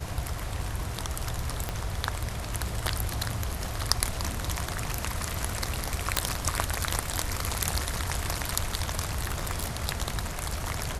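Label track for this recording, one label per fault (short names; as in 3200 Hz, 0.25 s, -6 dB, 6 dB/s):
1.690000	1.690000	pop -14 dBFS
6.170000	6.170000	pop -4 dBFS
9.260000	9.650000	clipped -21.5 dBFS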